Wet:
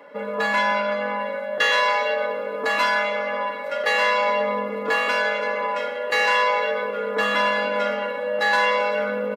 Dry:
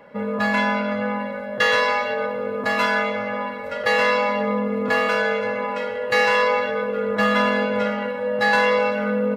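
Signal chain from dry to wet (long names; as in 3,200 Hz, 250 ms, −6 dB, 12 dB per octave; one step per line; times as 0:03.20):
high-pass filter 230 Hz 24 dB per octave
mains-hum notches 50/100/150/200/250/300/350/400/450 Hz
in parallel at −1 dB: brickwall limiter −15 dBFS, peak gain reduction 8 dB
on the sum: comb filter 6.9 ms, depth 51%
level −4.5 dB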